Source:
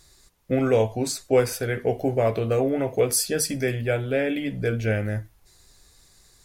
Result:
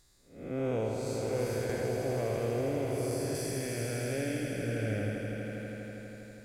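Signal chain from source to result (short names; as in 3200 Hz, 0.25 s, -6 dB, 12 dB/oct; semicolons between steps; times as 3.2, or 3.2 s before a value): time blur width 0.268 s; swelling echo 81 ms, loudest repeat 5, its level -10 dB; 1.69–3.35 three-band squash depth 70%; gain -8 dB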